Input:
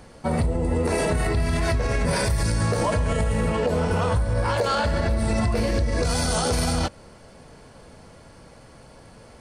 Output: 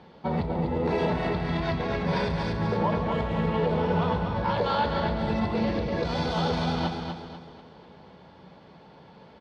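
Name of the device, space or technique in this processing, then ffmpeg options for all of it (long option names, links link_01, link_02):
frequency-shifting delay pedal into a guitar cabinet: -filter_complex "[0:a]asettb=1/sr,asplit=3[link_01][link_02][link_03];[link_01]atrim=end=2.524[link_04];[link_02]atrim=start=2.52:end=3.12,asetpts=PTS-STARTPTS,afade=type=in:duration=0.004:curve=qsin,afade=type=out:start_time=0.596:duration=0.004:curve=qsin,acrossover=split=2900[link_05][link_06];[link_06]acompressor=threshold=-44dB:ratio=4:attack=1:release=60[link_07];[link_05][link_07]amix=inputs=2:normalize=0[link_08];[link_03]atrim=start=3.116[link_09];[link_04][link_08]acrossfade=duration=0.004:curve1=hsin:curve2=qsin[link_10];[link_10][link_09]acrossfade=duration=0.004:curve1=qsin:curve2=hsin,aecho=1:1:246|492|738|984|1230:0.501|0.195|0.0762|0.0297|0.0116,asplit=5[link_11][link_12][link_13][link_14][link_15];[link_12]adelay=139,afreqshift=89,volume=-14dB[link_16];[link_13]adelay=278,afreqshift=178,volume=-22.6dB[link_17];[link_14]adelay=417,afreqshift=267,volume=-31.3dB[link_18];[link_15]adelay=556,afreqshift=356,volume=-39.9dB[link_19];[link_11][link_16][link_17][link_18][link_19]amix=inputs=5:normalize=0,highpass=83,equalizer=frequency=110:width_type=q:width=4:gain=-4,equalizer=frequency=180:width_type=q:width=4:gain=9,equalizer=frequency=400:width_type=q:width=4:gain=6,equalizer=frequency=880:width_type=q:width=4:gain=8,equalizer=frequency=3500:width_type=q:width=4:gain=7,lowpass=frequency=4300:width=0.5412,lowpass=frequency=4300:width=1.3066,volume=-6.5dB"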